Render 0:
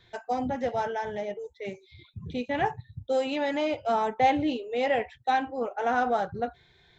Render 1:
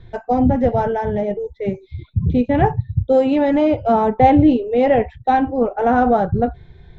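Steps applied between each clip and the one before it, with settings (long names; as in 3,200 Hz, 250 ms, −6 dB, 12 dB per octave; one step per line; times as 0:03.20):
spectral tilt −4.5 dB per octave
level +7.5 dB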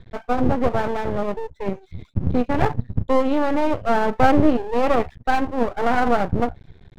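half-wave rectification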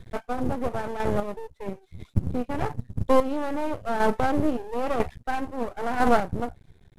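variable-slope delta modulation 64 kbit/s
square-wave tremolo 1 Hz, depth 60%, duty 20%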